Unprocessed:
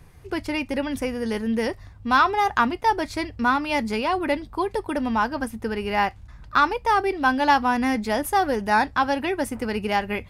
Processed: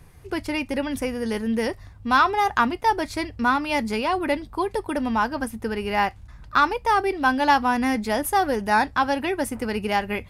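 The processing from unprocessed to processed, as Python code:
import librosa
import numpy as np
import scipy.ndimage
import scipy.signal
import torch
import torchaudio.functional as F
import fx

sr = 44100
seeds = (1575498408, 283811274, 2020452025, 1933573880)

y = fx.peak_eq(x, sr, hz=11000.0, db=3.5, octaves=0.86)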